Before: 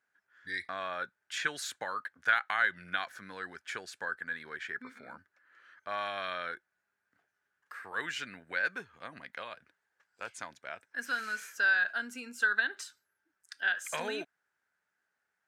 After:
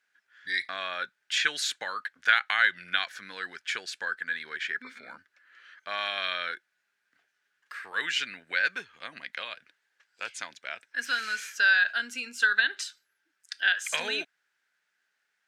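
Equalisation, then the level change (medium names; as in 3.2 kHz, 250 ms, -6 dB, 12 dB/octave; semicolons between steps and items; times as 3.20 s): frequency weighting D; 0.0 dB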